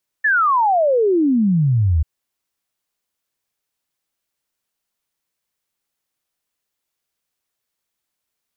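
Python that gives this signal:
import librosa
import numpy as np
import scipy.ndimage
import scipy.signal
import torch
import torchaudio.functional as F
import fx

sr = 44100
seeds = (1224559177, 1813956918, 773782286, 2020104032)

y = fx.ess(sr, length_s=1.79, from_hz=1800.0, to_hz=73.0, level_db=-12.5)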